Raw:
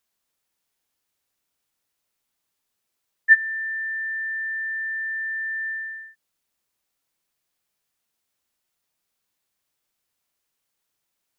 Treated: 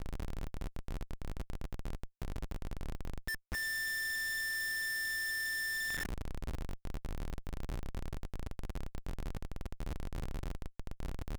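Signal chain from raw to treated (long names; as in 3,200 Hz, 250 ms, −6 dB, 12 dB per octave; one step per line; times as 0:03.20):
background noise brown −45 dBFS
downward compressor 16 to 1, threshold −42 dBFS, peak gain reduction 32.5 dB
comparator with hysteresis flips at −46 dBFS
level +9.5 dB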